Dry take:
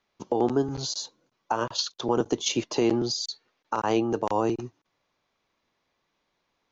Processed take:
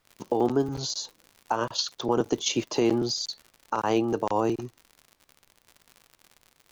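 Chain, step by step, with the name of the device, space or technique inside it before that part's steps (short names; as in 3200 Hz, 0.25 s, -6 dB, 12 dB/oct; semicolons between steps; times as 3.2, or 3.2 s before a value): vinyl LP (crackle 88/s -37 dBFS; pink noise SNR 44 dB)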